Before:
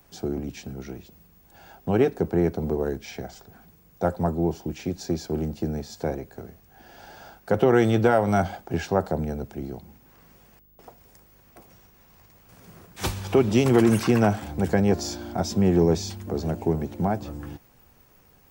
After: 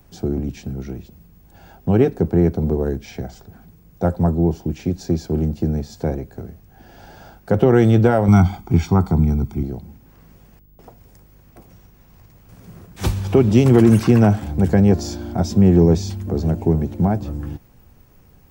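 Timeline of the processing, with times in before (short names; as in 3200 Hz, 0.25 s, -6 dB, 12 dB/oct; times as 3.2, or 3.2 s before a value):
8.28–9.63 comb 0.9 ms, depth 84%
whole clip: low shelf 300 Hz +11.5 dB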